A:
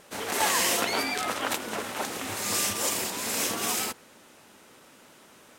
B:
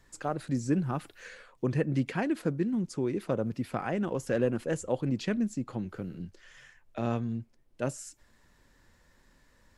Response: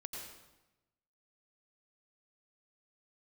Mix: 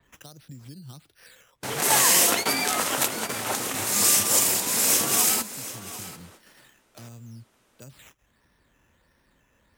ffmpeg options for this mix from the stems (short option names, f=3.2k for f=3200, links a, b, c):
-filter_complex "[0:a]adelay=1500,volume=2.5dB,asplit=2[a][b];[b]volume=-14dB[c];[1:a]acompressor=threshold=-35dB:ratio=3,acrusher=samples=8:mix=1:aa=0.000001:lfo=1:lforange=4.8:lforate=1.5,acrossover=split=150|3000[d][e][f];[e]acompressor=threshold=-60dB:ratio=2[g];[d][g][f]amix=inputs=3:normalize=0,volume=0dB,asplit=2[h][i];[i]apad=whole_len=312474[j];[a][j]sidechaingate=range=-33dB:threshold=-53dB:ratio=16:detection=peak[k];[c]aecho=0:1:743:1[l];[k][h][l]amix=inputs=3:normalize=0,highpass=46,adynamicequalizer=threshold=0.00891:dfrequency=5500:dqfactor=0.7:tfrequency=5500:tqfactor=0.7:attack=5:release=100:ratio=0.375:range=4:mode=boostabove:tftype=highshelf"